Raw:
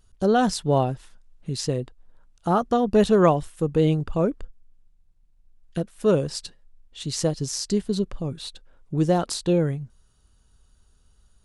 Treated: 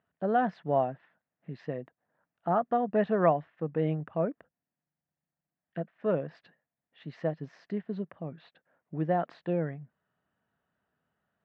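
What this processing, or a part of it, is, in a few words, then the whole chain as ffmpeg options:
bass cabinet: -af "highpass=190,highpass=87,equalizer=f=160:t=q:w=4:g=5,equalizer=f=390:t=q:w=4:g=-4,equalizer=f=670:t=q:w=4:g=8,equalizer=f=1800:t=q:w=4:g=8,lowpass=f=2400:w=0.5412,lowpass=f=2400:w=1.3066,volume=0.376"

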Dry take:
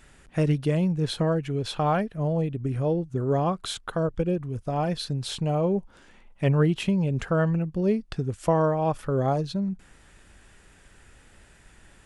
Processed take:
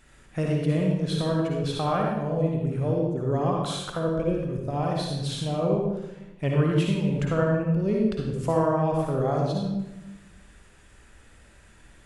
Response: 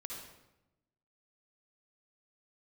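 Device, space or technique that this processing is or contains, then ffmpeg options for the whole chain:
bathroom: -filter_complex "[1:a]atrim=start_sample=2205[s0];[0:a][s0]afir=irnorm=-1:irlink=0,volume=1.26"

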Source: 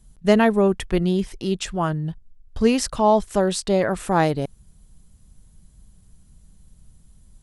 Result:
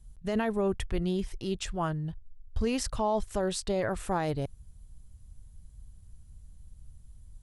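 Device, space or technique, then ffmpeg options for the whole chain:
car stereo with a boomy subwoofer: -af "lowshelf=f=130:t=q:w=1.5:g=8,alimiter=limit=0.237:level=0:latency=1:release=20,volume=0.422"

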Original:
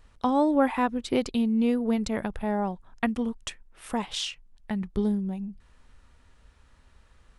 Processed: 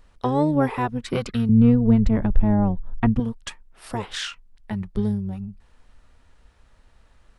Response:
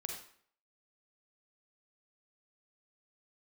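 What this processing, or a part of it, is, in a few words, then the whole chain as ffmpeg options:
octave pedal: -filter_complex "[0:a]asettb=1/sr,asplit=3[s0][s1][s2];[s0]atrim=end=1.494[s3];[s1]atrim=start=1.49:end=3.2,asetpts=PTS-STARTPTS,afade=t=in:d=0.004:c=qsin,afade=t=out:st=1.706:d=0.004:c=qsin,aemphasis=mode=reproduction:type=riaa[s4];[s2]atrim=start=3.196[s5];[s3][s4]acrossfade=d=0.004:c1=hsin:c2=qsin[s6];[s6][s5]acrossfade=d=0.004:c1=qsin:c2=hsin,asplit=2[s7][s8];[s8]asetrate=22050,aresample=44100,atempo=2,volume=0.708[s9];[s7][s9]amix=inputs=2:normalize=0"

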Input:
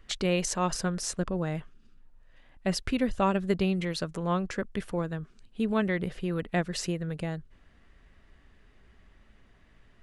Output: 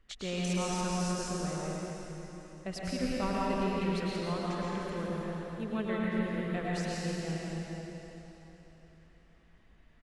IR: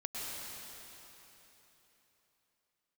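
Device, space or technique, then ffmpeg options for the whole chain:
cave: -filter_complex "[0:a]aecho=1:1:168:0.376[s0];[1:a]atrim=start_sample=2205[s1];[s0][s1]afir=irnorm=-1:irlink=0,highshelf=f=10000:g=-4,volume=0.473"

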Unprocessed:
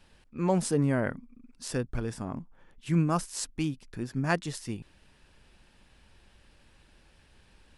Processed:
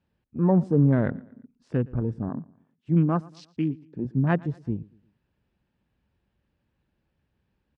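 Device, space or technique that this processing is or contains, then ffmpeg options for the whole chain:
over-cleaned archive recording: -filter_complex "[0:a]asettb=1/sr,asplit=3[s0][s1][s2];[s0]atrim=end=2.294[s3];[s1]atrim=start=2.29:end=4.05,asetpts=PTS-STARTPTS,afade=t=in:d=0.004:c=qsin,afade=t=out:st=1.756:d=0.004:c=qsin,highpass=180[s4];[s2]atrim=start=4.046[s5];[s3][s4]acrossfade=d=0.004:c1=hsin:c2=qsin[s6];[s6][s5]acrossfade=d=0.004:c1=qsin:c2=hsin,highpass=130,lowpass=7700,afwtdn=0.00891,aemphasis=mode=reproduction:type=riaa,aecho=1:1:116|232|348:0.0708|0.0297|0.0125"

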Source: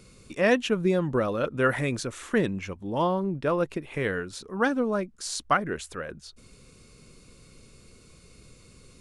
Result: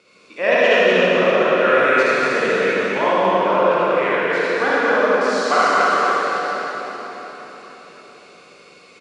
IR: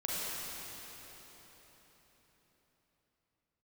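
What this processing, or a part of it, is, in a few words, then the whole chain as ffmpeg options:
station announcement: -filter_complex "[0:a]highpass=470,lowpass=4000,equalizer=f=2500:t=o:w=0.24:g=4,aecho=1:1:75.8|244.9:0.708|0.794[s0];[1:a]atrim=start_sample=2205[s1];[s0][s1]afir=irnorm=-1:irlink=0,volume=1.68"

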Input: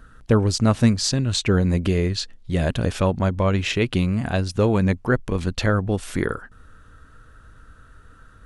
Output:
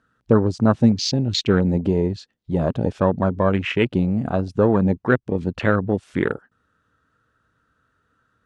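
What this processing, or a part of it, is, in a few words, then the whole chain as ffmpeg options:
over-cleaned archive recording: -af "highpass=130,lowpass=7100,afwtdn=0.0398,volume=1.41"

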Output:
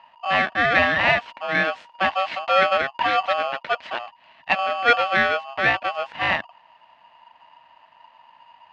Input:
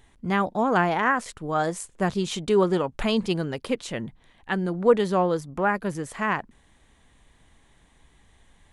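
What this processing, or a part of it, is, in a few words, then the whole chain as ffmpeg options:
ring modulator pedal into a guitar cabinet: -filter_complex "[0:a]asettb=1/sr,asplit=3[s0][s1][s2];[s0]atrim=end=3.974[s3];[s1]atrim=start=3.97:end=4.59,asetpts=PTS-STARTPTS,afade=t=in:d=0.004:c=qsin,afade=t=out:st=0.616:d=0.004:c=qsin,tiltshelf=f=740:g=-7.5[s4];[s2]atrim=start=4.586[s5];[s3][s4]acrossfade=d=0.004:c1=hsin:c2=qsin[s6];[s6][s5]acrossfade=d=0.004:c1=qsin:c2=hsin,aeval=exprs='val(0)*sgn(sin(2*PI*950*n/s))':c=same,highpass=94,equalizer=f=120:t=q:w=4:g=-7,equalizer=f=410:t=q:w=4:g=-9,equalizer=f=640:t=q:w=4:g=10,equalizer=f=920:t=q:w=4:g=7,equalizer=f=1800:t=q:w=4:g=9,equalizer=f=2700:t=q:w=4:g=5,lowpass=f=3700:w=0.5412,lowpass=f=3700:w=1.3066,volume=0.891"

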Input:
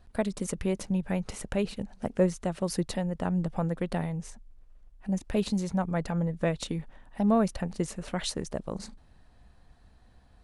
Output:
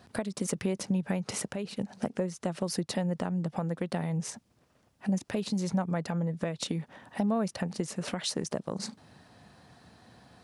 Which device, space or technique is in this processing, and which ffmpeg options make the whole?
broadcast voice chain: -af "highpass=f=110:w=0.5412,highpass=f=110:w=1.3066,deesser=0.55,acompressor=threshold=0.0158:ratio=4,equalizer=f=5200:t=o:w=0.51:g=4,alimiter=level_in=1.5:limit=0.0631:level=0:latency=1:release=395,volume=0.668,volume=2.82"

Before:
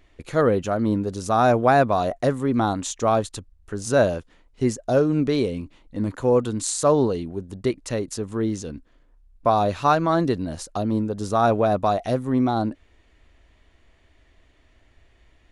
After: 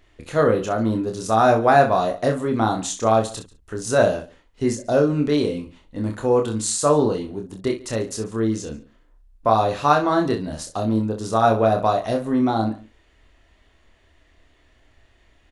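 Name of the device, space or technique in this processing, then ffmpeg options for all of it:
slapback doubling: -filter_complex "[0:a]lowshelf=f=330:g=-3.5,bandreject=f=2300:w=23,asplit=2[s0][s1];[s1]adelay=139.9,volume=0.0891,highshelf=f=4000:g=-3.15[s2];[s0][s2]amix=inputs=2:normalize=0,asplit=3[s3][s4][s5];[s4]adelay=27,volume=0.631[s6];[s5]adelay=64,volume=0.282[s7];[s3][s6][s7]amix=inputs=3:normalize=0,volume=1.12"

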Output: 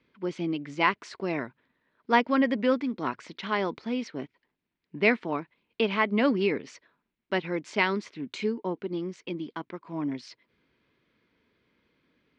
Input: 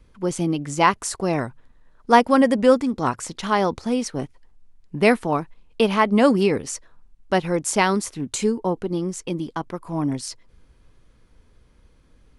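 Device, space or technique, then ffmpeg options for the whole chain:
kitchen radio: -af "highpass=230,equalizer=f=520:t=q:w=4:g=-5,equalizer=f=780:t=q:w=4:g=-8,equalizer=f=1200:t=q:w=4:g=-4,equalizer=f=2200:t=q:w=4:g=5,lowpass=f=4200:w=0.5412,lowpass=f=4200:w=1.3066,volume=0.596"

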